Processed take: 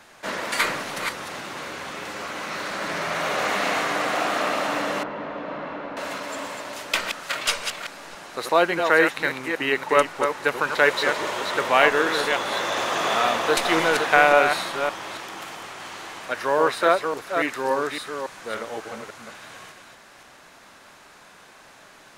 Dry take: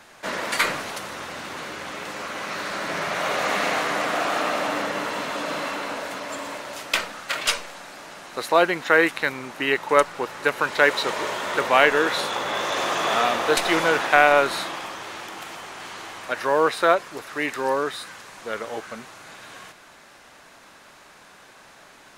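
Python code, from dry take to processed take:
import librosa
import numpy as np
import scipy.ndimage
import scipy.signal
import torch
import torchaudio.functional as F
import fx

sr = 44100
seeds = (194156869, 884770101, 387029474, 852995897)

y = fx.reverse_delay(x, sr, ms=281, wet_db=-6.0)
y = fx.spacing_loss(y, sr, db_at_10k=43, at=(5.03, 5.97))
y = F.gain(torch.from_numpy(y), -1.0).numpy()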